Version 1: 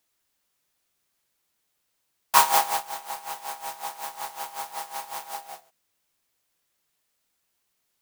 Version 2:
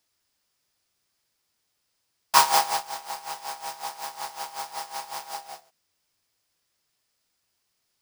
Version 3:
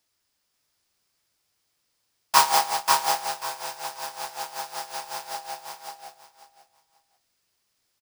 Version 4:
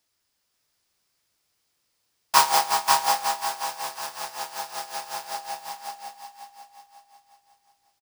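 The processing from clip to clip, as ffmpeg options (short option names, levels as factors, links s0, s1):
-af "equalizer=f=100:t=o:w=0.33:g=8,equalizer=f=5000:t=o:w=0.33:g=7,equalizer=f=16000:t=o:w=0.33:g=-10"
-af "aecho=1:1:539|1078|1617:0.668|0.14|0.0295"
-af "aecho=1:1:363|726|1089|1452|1815|2178:0.316|0.171|0.0922|0.0498|0.0269|0.0145"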